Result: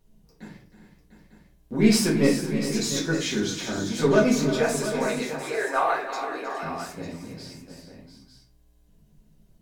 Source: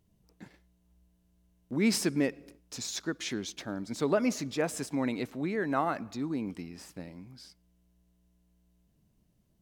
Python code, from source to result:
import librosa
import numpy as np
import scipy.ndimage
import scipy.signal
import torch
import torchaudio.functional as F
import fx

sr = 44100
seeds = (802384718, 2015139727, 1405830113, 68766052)

y = fx.highpass(x, sr, hz=480.0, slope=24, at=(4.49, 6.63))
y = 10.0 ** (-16.5 / 20.0) * np.tanh(y / 10.0 ** (-16.5 / 20.0))
y = fx.echo_multitap(y, sr, ms=(314, 371, 412, 698, 900), db=(-12.5, -15.0, -13.5, -11.0, -11.5))
y = fx.room_shoebox(y, sr, seeds[0], volume_m3=30.0, walls='mixed', distance_m=1.0)
y = y * 10.0 ** (1.5 / 20.0)